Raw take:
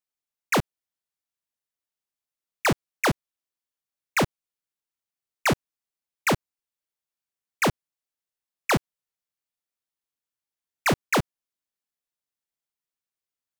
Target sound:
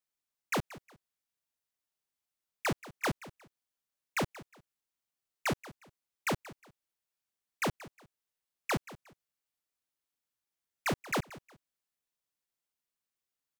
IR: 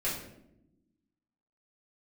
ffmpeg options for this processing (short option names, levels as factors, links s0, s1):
-filter_complex "[0:a]alimiter=level_in=1.78:limit=0.0631:level=0:latency=1,volume=0.562,asplit=2[s0][s1];[s1]aecho=0:1:180|360:0.133|0.036[s2];[s0][s2]amix=inputs=2:normalize=0"